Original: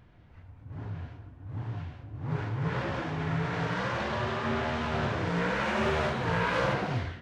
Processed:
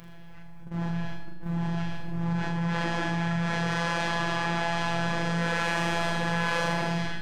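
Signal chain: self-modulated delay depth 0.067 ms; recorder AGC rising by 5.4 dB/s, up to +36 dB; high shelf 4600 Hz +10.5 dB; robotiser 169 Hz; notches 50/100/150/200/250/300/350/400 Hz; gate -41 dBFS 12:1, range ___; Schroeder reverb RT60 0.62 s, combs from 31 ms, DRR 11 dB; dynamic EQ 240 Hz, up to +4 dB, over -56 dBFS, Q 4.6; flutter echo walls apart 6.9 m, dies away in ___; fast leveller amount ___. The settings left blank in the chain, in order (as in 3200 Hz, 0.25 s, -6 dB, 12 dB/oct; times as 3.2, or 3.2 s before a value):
-28 dB, 0.43 s, 70%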